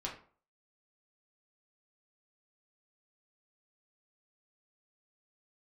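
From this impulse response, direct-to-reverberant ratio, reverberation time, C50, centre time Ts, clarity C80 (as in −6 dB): −3.0 dB, 0.45 s, 8.0 dB, 24 ms, 12.5 dB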